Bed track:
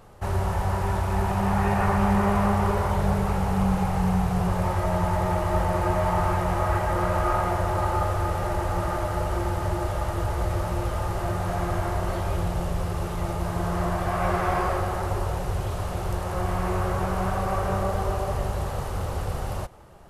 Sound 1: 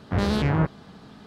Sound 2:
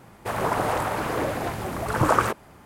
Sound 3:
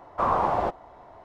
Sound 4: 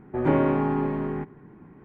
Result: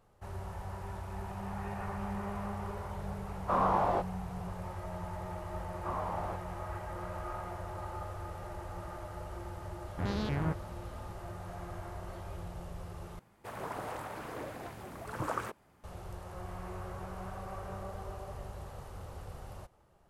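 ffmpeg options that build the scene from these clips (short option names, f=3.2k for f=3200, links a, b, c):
-filter_complex "[3:a]asplit=2[a][b];[0:a]volume=-16.5dB[c];[a]flanger=delay=20:depth=2.2:speed=2[d];[1:a]aresample=16000,aresample=44100[e];[c]asplit=2[f][g];[f]atrim=end=13.194[h];[2:a]atrim=end=2.65,asetpts=PTS-STARTPTS,volume=-15.5dB[i];[g]atrim=start=15.836[j];[d]atrim=end=1.24,asetpts=PTS-STARTPTS,volume=-2dB,afade=t=in:d=0.004:c=hsin,afade=t=out:st=1.236:d=0.004:c=hsin,adelay=3300[k];[b]atrim=end=1.24,asetpts=PTS-STARTPTS,volume=-15dB,afade=t=in:d=0.004:c=hsin,afade=t=out:st=1.236:d=0.004:c=hsin,adelay=5660[l];[e]atrim=end=1.26,asetpts=PTS-STARTPTS,volume=-11dB,afade=t=in:d=0.004:c=hsin,afade=t=out:st=1.256:d=0.004:c=hsin,adelay=9870[m];[h][i]acrossfade=d=0.004:c1=hsin:c2=hsin[n];[n][j]acrossfade=d=0.004:c1=hsin:c2=hsin[o];[o][k][l][m]amix=inputs=4:normalize=0"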